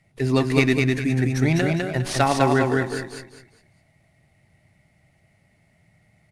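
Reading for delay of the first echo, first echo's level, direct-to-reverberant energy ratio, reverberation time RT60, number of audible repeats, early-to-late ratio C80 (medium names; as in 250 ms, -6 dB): 203 ms, -3.0 dB, no reverb, no reverb, 4, no reverb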